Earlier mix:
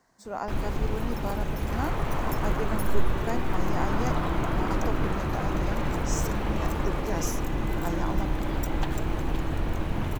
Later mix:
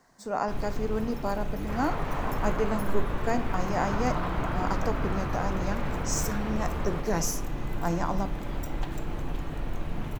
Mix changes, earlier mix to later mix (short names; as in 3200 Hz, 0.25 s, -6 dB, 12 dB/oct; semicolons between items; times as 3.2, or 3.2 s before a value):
speech +3.5 dB; first sound -7.0 dB; reverb: on, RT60 0.45 s